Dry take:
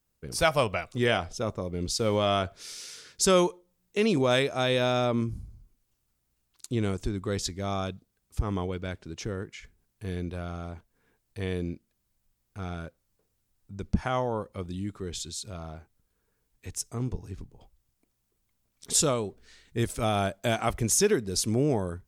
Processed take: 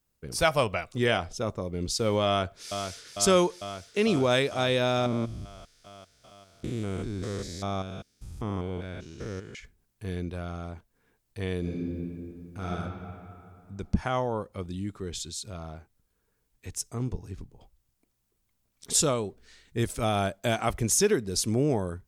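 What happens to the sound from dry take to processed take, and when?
2.26–3.13 s: echo throw 450 ms, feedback 80%, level -7.5 dB
5.06–9.55 s: spectrogram pixelated in time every 200 ms
11.59–12.69 s: reverb throw, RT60 2.6 s, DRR -4.5 dB

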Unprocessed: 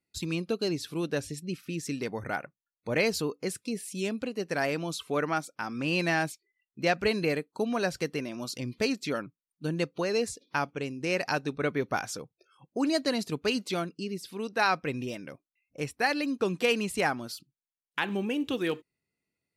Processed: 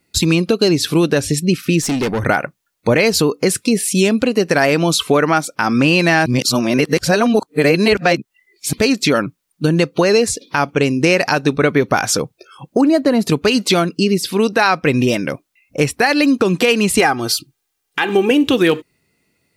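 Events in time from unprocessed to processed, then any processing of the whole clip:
1.82–2.26 s: valve stage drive 36 dB, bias 0.3
6.26–8.73 s: reverse
12.81–13.27 s: peaking EQ 5.4 kHz -14.5 dB 2.9 oct
17.00–18.31 s: comb 2.5 ms, depth 62%
whole clip: compression 6:1, threshold -31 dBFS; loudness maximiser +23.5 dB; trim -2 dB

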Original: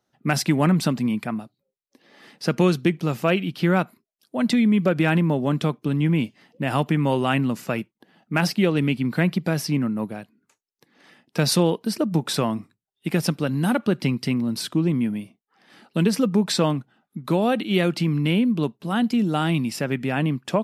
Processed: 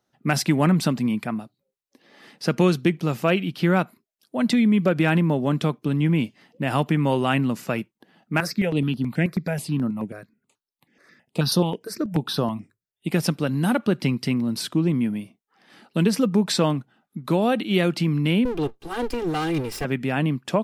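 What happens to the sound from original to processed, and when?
8.40–13.12 s: stepped phaser 9.3 Hz 830–7700 Hz
18.45–19.85 s: comb filter that takes the minimum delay 2.5 ms

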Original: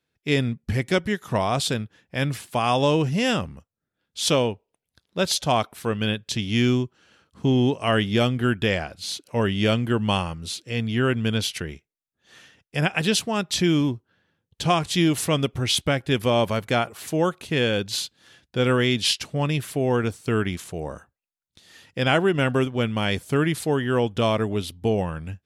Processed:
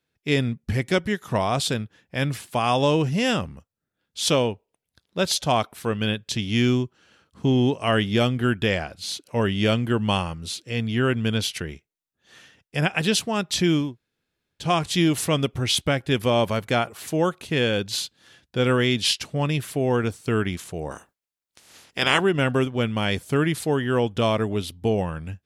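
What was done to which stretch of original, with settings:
13.86–14.63 s: room tone, crossfade 0.24 s
20.90–22.19 s: spectral peaks clipped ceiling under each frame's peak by 20 dB

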